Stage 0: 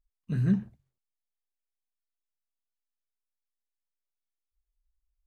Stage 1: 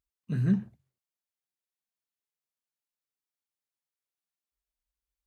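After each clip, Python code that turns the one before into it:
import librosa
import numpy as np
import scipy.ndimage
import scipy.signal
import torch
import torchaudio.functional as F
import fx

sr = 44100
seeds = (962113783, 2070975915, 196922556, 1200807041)

y = scipy.signal.sosfilt(scipy.signal.butter(2, 84.0, 'highpass', fs=sr, output='sos'), x)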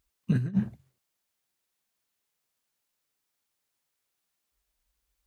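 y = fx.over_compress(x, sr, threshold_db=-31.0, ratio=-0.5)
y = y * librosa.db_to_amplitude(6.0)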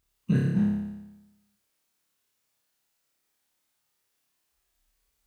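y = fx.room_flutter(x, sr, wall_m=5.0, rt60_s=0.99)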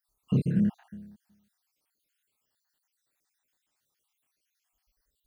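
y = fx.spec_dropout(x, sr, seeds[0], share_pct=59)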